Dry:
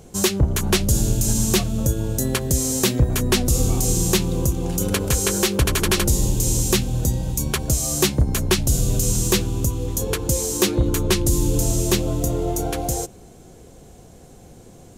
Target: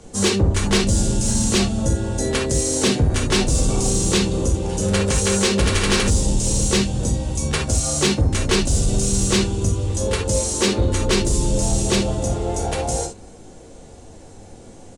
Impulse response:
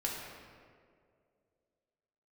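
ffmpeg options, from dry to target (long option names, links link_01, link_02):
-filter_complex "[0:a]equalizer=frequency=170:width_type=o:width=2.1:gain=-2,acrossover=split=170|650|6700[link_01][link_02][link_03][link_04];[link_04]alimiter=limit=-20.5dB:level=0:latency=1:release=23[link_05];[link_01][link_02][link_03][link_05]amix=inputs=4:normalize=0,asplit=2[link_06][link_07];[link_07]asetrate=52444,aresample=44100,atempo=0.840896,volume=-9dB[link_08];[link_06][link_08]amix=inputs=2:normalize=0,aresample=22050,aresample=44100[link_09];[1:a]atrim=start_sample=2205,atrim=end_sample=3528[link_10];[link_09][link_10]afir=irnorm=-1:irlink=0,acontrast=75,volume=-5dB"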